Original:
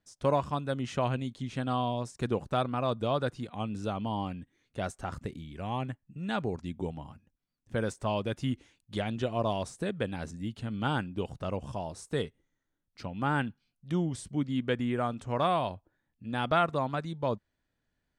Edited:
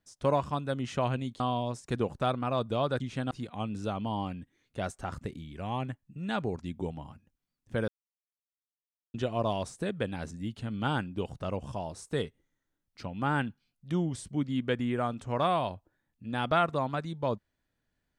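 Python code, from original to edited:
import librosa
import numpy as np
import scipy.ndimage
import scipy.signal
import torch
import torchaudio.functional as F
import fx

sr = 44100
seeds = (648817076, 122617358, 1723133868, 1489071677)

y = fx.edit(x, sr, fx.move(start_s=1.4, length_s=0.31, to_s=3.31),
    fx.silence(start_s=7.88, length_s=1.26), tone=tone)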